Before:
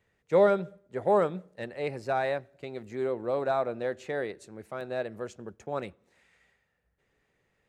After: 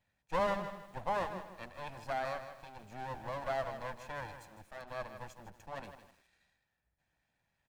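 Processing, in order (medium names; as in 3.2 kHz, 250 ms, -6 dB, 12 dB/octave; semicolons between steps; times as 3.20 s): comb filter that takes the minimum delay 1.2 ms; delay 244 ms -21 dB; bit-crushed delay 158 ms, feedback 35%, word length 9-bit, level -10 dB; trim -6 dB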